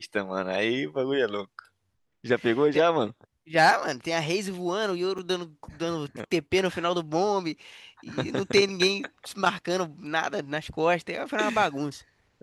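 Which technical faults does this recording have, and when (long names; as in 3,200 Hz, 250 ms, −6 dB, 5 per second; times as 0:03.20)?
0:05.18: drop-out 5 ms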